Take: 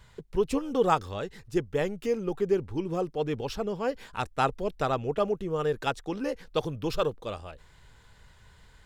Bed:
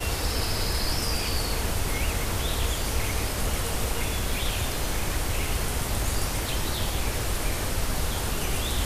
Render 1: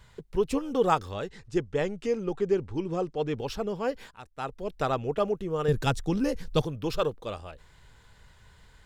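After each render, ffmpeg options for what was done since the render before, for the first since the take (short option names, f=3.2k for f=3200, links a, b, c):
-filter_complex "[0:a]asettb=1/sr,asplit=3[a][b][c];[a]atrim=end=1.284[d];[b]atrim=start=1.28:end=3.36,asetpts=PTS-STARTPTS,afade=t=in:d=0.004:c=qsin,afade=t=out:st=2.076:d=0.004:c=qsin,lowpass=f=8.8k:w=0.5412,lowpass=f=8.8k:w=1.3066[e];[c]atrim=start=3.356[f];[d][e]acrossfade=d=0.004:c1=hsin:c2=qsin[g];[g][f]acrossfade=d=0.004:c1=qsin:c2=hsin,asettb=1/sr,asplit=3[h][i][j];[h]atrim=end=5.684[k];[i]atrim=start=5.68:end=6.62,asetpts=PTS-STARTPTS,afade=t=in:d=0.004:c=qsin,afade=t=out:st=0.936:d=0.004:c=qsin,bass=f=250:g=14,treble=f=4k:g=7[l];[j]atrim=start=6.616[m];[k][l]acrossfade=d=0.004:c1=hsin:c2=qsin[n];[n][m]acrossfade=d=0.004:c1=qsin:c2=hsin,asplit=2[o][p];[o]atrim=end=4.11,asetpts=PTS-STARTPTS,afade=t=out:st=4.106:d=0.004:c=hsin:silence=0.16788[q];[p]atrim=start=4.11,asetpts=PTS-STARTPTS,afade=t=in:d=0.7:c=qua:silence=0.16788[r];[q][r]concat=n=2:v=0:a=1"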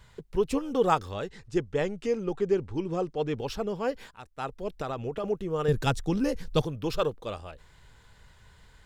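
-filter_complex "[0:a]asettb=1/sr,asplit=3[a][b][c];[a]atrim=end=4.744[d];[b]atrim=start=4.74:end=5.24,asetpts=PTS-STARTPTS,afade=t=in:d=0.004:c=qsin,afade=t=out:st=0.496:d=0.004:c=qsin,acompressor=threshold=-28dB:ratio=6:attack=3.2:release=140:knee=1:detection=peak[e];[c]atrim=start=5.236[f];[d][e]acrossfade=d=0.004:c1=hsin:c2=qsin[g];[g][f]acrossfade=d=0.004:c1=qsin:c2=hsin"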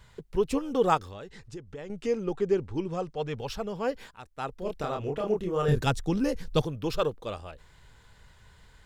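-filter_complex "[0:a]asettb=1/sr,asplit=3[a][b][c];[a]atrim=end=0.974[d];[b]atrim=start=0.97:end=1.9,asetpts=PTS-STARTPTS,afade=t=in:d=0.004:c=qsin,afade=t=out:st=0.926:d=0.004:c=qsin,acompressor=threshold=-39dB:ratio=4:attack=3.2:release=140:knee=1:detection=peak[e];[c]atrim=start=1.896[f];[d][e]acrossfade=d=0.004:c1=hsin:c2=qsin[g];[g][f]acrossfade=d=0.004:c1=qsin:c2=hsin,asettb=1/sr,asplit=3[h][i][j];[h]atrim=end=2.884[k];[i]atrim=start=2.88:end=3.75,asetpts=PTS-STARTPTS,afade=t=in:d=0.004:c=qsin,afade=t=out:st=0.866:d=0.004:c=qsin,equalizer=f=320:t=o:w=0.77:g=-8.5[l];[j]atrim=start=3.746[m];[k][l]acrossfade=d=0.004:c1=hsin:c2=qsin[n];[n][m]acrossfade=d=0.004:c1=qsin:c2=hsin,asettb=1/sr,asplit=3[o][p][q];[o]atrim=end=4.594[r];[p]atrim=start=4.59:end=5.81,asetpts=PTS-STARTPTS,afade=t=in:d=0.004:c=qsin,afade=t=out:st=1.216:d=0.004:c=qsin,asplit=2[s][t];[t]adelay=28,volume=-2.5dB[u];[s][u]amix=inputs=2:normalize=0,atrim=end_sample=53802[v];[q]atrim=start=5.806[w];[r][v]acrossfade=d=0.004:c1=hsin:c2=qsin[x];[x][w]acrossfade=d=0.004:c1=qsin:c2=hsin"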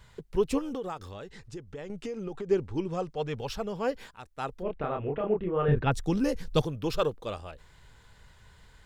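-filter_complex "[0:a]asettb=1/sr,asplit=3[a][b][c];[a]atrim=end=0.684[d];[b]atrim=start=0.68:end=2.51,asetpts=PTS-STARTPTS,afade=t=in:d=0.004:c=qsin,afade=t=out:st=1.826:d=0.004:c=qsin,acompressor=threshold=-31dB:ratio=16:attack=3.2:release=140:knee=1:detection=peak[e];[c]atrim=start=2.506[f];[d][e]acrossfade=d=0.004:c1=hsin:c2=qsin[g];[g][f]acrossfade=d=0.004:c1=qsin:c2=hsin,asplit=3[h][i][j];[h]afade=t=out:st=4.61:d=0.02[k];[i]lowpass=f=2.7k:w=0.5412,lowpass=f=2.7k:w=1.3066,afade=t=in:st=4.61:d=0.02,afade=t=out:st=5.91:d=0.02[l];[j]afade=t=in:st=5.91:d=0.02[m];[k][l][m]amix=inputs=3:normalize=0"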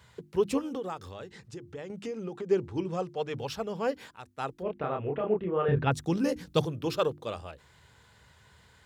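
-af "highpass=f=70:w=0.5412,highpass=f=70:w=1.3066,bandreject=f=50:t=h:w=6,bandreject=f=100:t=h:w=6,bandreject=f=150:t=h:w=6,bandreject=f=200:t=h:w=6,bandreject=f=250:t=h:w=6,bandreject=f=300:t=h:w=6,bandreject=f=350:t=h:w=6"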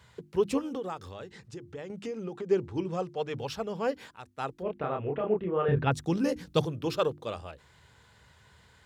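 -af "highshelf=f=11k:g=-4"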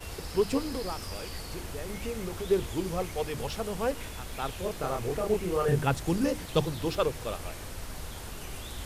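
-filter_complex "[1:a]volume=-12.5dB[a];[0:a][a]amix=inputs=2:normalize=0"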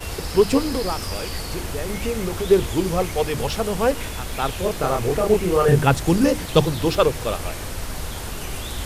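-af "volume=10dB"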